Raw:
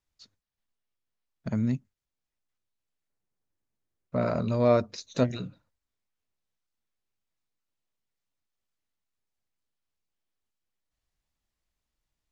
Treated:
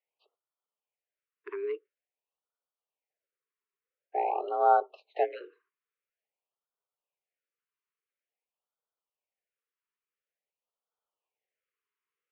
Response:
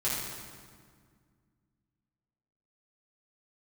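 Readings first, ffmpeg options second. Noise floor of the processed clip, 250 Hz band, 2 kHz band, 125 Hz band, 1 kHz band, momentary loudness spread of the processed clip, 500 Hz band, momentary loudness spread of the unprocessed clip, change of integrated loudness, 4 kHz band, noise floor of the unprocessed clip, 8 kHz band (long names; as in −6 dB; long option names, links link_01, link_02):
below −85 dBFS, −22.0 dB, −1.5 dB, below −40 dB, +9.5 dB, 17 LU, −3.5 dB, 15 LU, −1.5 dB, below −10 dB, below −85 dBFS, can't be measured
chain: -af "highpass=frequency=260:width_type=q:width=0.5412,highpass=frequency=260:width_type=q:width=1.307,lowpass=frequency=2700:width_type=q:width=0.5176,lowpass=frequency=2700:width_type=q:width=0.7071,lowpass=frequency=2700:width_type=q:width=1.932,afreqshift=180,afftfilt=real='re*(1-between(b*sr/1024,640*pow(2200/640,0.5+0.5*sin(2*PI*0.48*pts/sr))/1.41,640*pow(2200/640,0.5+0.5*sin(2*PI*0.48*pts/sr))*1.41))':imag='im*(1-between(b*sr/1024,640*pow(2200/640,0.5+0.5*sin(2*PI*0.48*pts/sr))/1.41,640*pow(2200/640,0.5+0.5*sin(2*PI*0.48*pts/sr))*1.41))':win_size=1024:overlap=0.75"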